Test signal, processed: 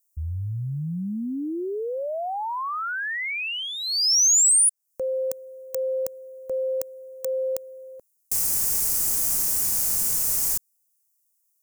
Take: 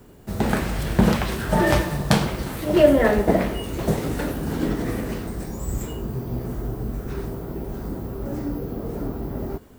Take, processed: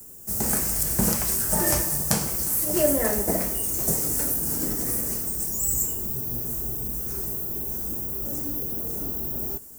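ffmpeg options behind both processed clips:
-filter_complex "[0:a]acrossover=split=420|1200|4500[s0][s1][s2][s3];[s3]acompressor=threshold=0.0141:ratio=6[s4];[s0][s1][s2][s4]amix=inputs=4:normalize=0,aexciter=amount=9.9:drive=8.7:freq=5500,volume=0.398"

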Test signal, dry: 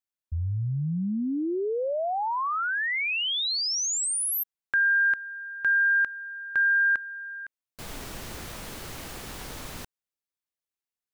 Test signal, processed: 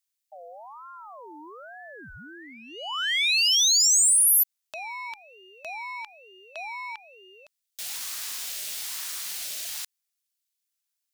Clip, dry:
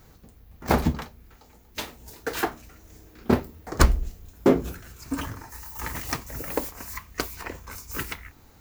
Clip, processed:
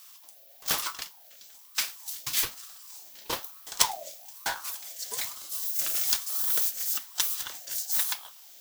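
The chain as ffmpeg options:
-af "aexciter=amount=6.8:drive=9.7:freq=2200,aeval=exprs='val(0)*sin(2*PI*910*n/s+910*0.35/1.1*sin(2*PI*1.1*n/s))':c=same,volume=0.224"

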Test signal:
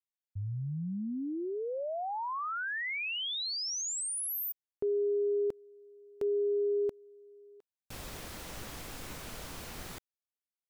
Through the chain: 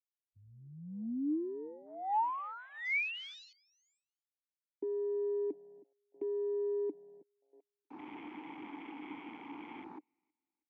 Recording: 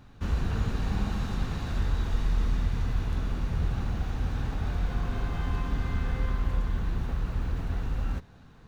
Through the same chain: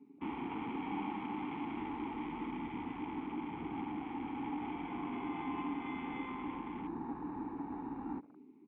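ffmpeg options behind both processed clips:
-filter_complex "[0:a]asplit=3[s0][s1][s2];[s0]bandpass=f=300:t=q:w=8,volume=1[s3];[s1]bandpass=f=870:t=q:w=8,volume=0.501[s4];[s2]bandpass=f=2240:t=q:w=8,volume=0.355[s5];[s3][s4][s5]amix=inputs=3:normalize=0,highshelf=f=2300:g=5.5,asplit=2[s6][s7];[s7]adelay=318,lowpass=f=3300:p=1,volume=0.0794,asplit=2[s8][s9];[s9]adelay=318,lowpass=f=3300:p=1,volume=0.36,asplit=2[s10][s11];[s11]adelay=318,lowpass=f=3300:p=1,volume=0.36[s12];[s8][s10][s12]amix=inputs=3:normalize=0[s13];[s6][s13]amix=inputs=2:normalize=0,acontrast=78,acrossover=split=180 2100:gain=0.2 1 0.112[s14][s15][s16];[s14][s15][s16]amix=inputs=3:normalize=0,acrossover=split=400|1700[s17][s18][s19];[s17]alimiter=level_in=6.31:limit=0.0631:level=0:latency=1:release=423,volume=0.158[s20];[s19]acontrast=69[s21];[s20][s18][s21]amix=inputs=3:normalize=0,afwtdn=0.00178,aresample=16000,aresample=44100,volume=1.78"

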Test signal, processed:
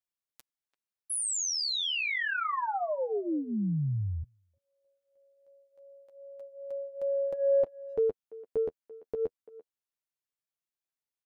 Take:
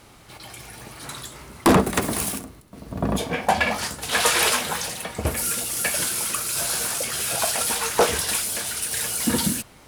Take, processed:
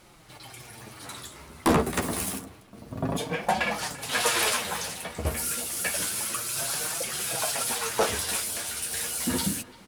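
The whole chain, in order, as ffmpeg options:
-filter_complex "[0:a]acontrast=46,flanger=delay=5.3:depth=7.9:regen=-12:speed=0.28:shape=triangular,asplit=2[s0][s1];[s1]adelay=340,highpass=300,lowpass=3400,asoftclip=type=hard:threshold=0.224,volume=0.126[s2];[s0][s2]amix=inputs=2:normalize=0,volume=0.447"

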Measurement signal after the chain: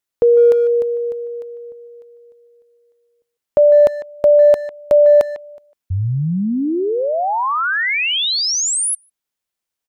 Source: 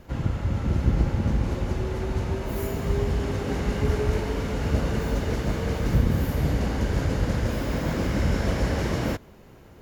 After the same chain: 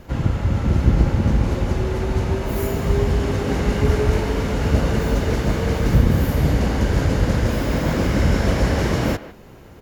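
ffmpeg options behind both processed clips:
-filter_complex "[0:a]asplit=2[s0][s1];[s1]adelay=150,highpass=300,lowpass=3400,asoftclip=type=hard:threshold=0.141,volume=0.2[s2];[s0][s2]amix=inputs=2:normalize=0,volume=2"

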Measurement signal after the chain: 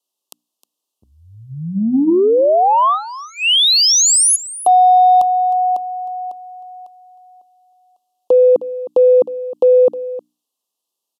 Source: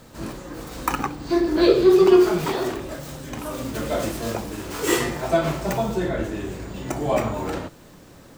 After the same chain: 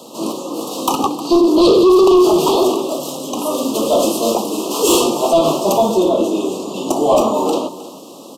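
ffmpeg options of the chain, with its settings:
-filter_complex "[0:a]highpass=f=230:w=0.5412,highpass=f=230:w=1.3066,bandreject=f=60:t=h:w=6,bandreject=f=120:t=h:w=6,bandreject=f=180:t=h:w=6,bandreject=f=240:t=h:w=6,bandreject=f=300:t=h:w=6,acontrast=65,aresample=32000,aresample=44100,acontrast=83,asplit=2[s0][s1];[s1]aecho=0:1:311:0.15[s2];[s0][s2]amix=inputs=2:normalize=0,apsyclip=2.11,asuperstop=centerf=1800:order=12:qfactor=1.2,volume=0.447"

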